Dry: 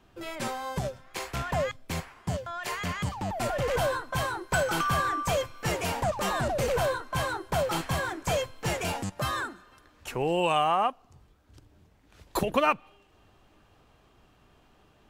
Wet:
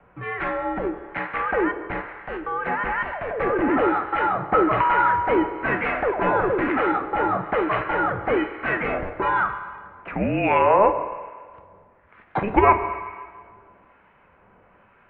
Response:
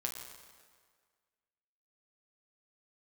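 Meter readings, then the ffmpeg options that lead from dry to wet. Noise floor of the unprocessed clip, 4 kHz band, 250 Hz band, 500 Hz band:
−62 dBFS, −8.0 dB, +10.0 dB, +6.5 dB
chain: -filter_complex "[0:a]crystalizer=i=9.5:c=0,highpass=frequency=240:width_type=q:width=0.5412,highpass=frequency=240:width_type=q:width=1.307,lowpass=frequency=2200:width_type=q:width=0.5176,lowpass=frequency=2200:width_type=q:width=0.7071,lowpass=frequency=2200:width_type=q:width=1.932,afreqshift=-210,asplit=2[link_01][link_02];[1:a]atrim=start_sample=2205,lowpass=4100[link_03];[link_02][link_03]afir=irnorm=-1:irlink=0,volume=1dB[link_04];[link_01][link_04]amix=inputs=2:normalize=0,acrossover=split=1000[link_05][link_06];[link_05]aeval=exprs='val(0)*(1-0.5/2+0.5/2*cos(2*PI*1.1*n/s))':channel_layout=same[link_07];[link_06]aeval=exprs='val(0)*(1-0.5/2-0.5/2*cos(2*PI*1.1*n/s))':channel_layout=same[link_08];[link_07][link_08]amix=inputs=2:normalize=0"

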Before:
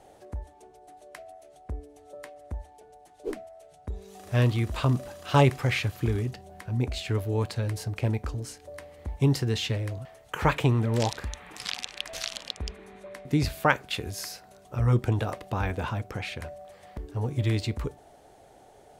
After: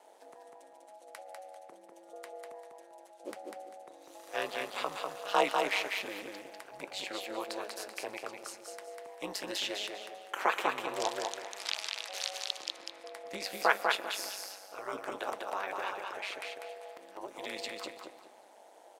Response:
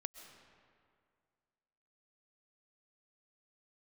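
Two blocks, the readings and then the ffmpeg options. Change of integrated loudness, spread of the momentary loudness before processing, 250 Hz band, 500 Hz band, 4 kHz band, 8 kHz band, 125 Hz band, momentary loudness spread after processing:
−7.5 dB, 19 LU, −15.5 dB, −5.0 dB, −1.5 dB, −1.5 dB, −38.0 dB, 21 LU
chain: -filter_complex "[0:a]highpass=frequency=500:width=0.5412,highpass=frequency=500:width=1.3066,aecho=1:1:197|394|591|788:0.668|0.18|0.0487|0.0132,asplit=2[link_01][link_02];[1:a]atrim=start_sample=2205[link_03];[link_02][link_03]afir=irnorm=-1:irlink=0,volume=-2dB[link_04];[link_01][link_04]amix=inputs=2:normalize=0,aeval=exprs='val(0)*sin(2*PI*99*n/s)':channel_layout=same,volume=-4dB"

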